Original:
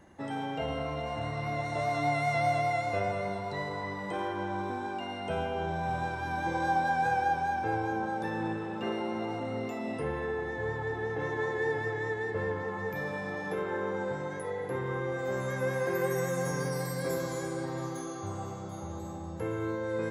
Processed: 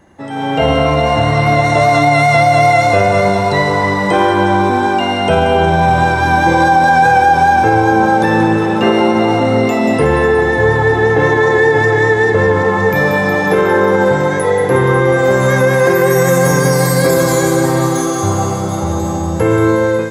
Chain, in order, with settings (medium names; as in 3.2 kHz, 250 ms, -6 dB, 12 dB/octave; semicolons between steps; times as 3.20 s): level rider gain up to 14.5 dB; on a send: feedback echo behind a high-pass 182 ms, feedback 73%, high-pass 4.3 kHz, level -6.5 dB; on the sum: loudness maximiser +9 dB; trim -1 dB